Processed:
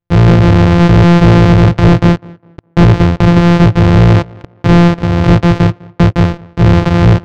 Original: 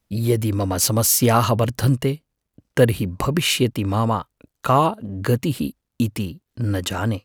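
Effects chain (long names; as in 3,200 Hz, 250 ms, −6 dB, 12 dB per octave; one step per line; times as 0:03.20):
samples sorted by size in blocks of 256 samples
parametric band 110 Hz +14 dB 0.47 octaves
leveller curve on the samples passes 5
high-frequency loss of the air 170 metres
on a send: tape delay 205 ms, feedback 32%, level −21.5 dB, low-pass 2,000 Hz
on the sum: level −1.5 dB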